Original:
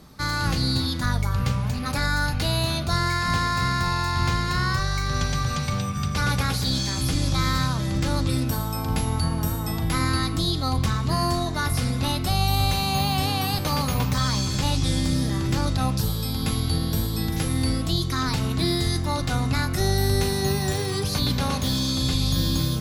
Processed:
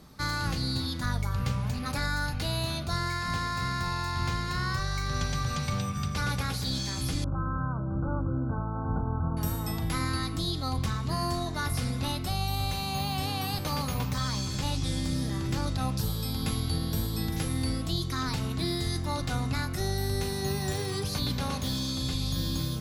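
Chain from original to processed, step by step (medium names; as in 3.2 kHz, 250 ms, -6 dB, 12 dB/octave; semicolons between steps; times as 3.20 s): gain riding 0.5 s; 7.24–9.37 s: brick-wall FIR low-pass 1.6 kHz; trim -6.5 dB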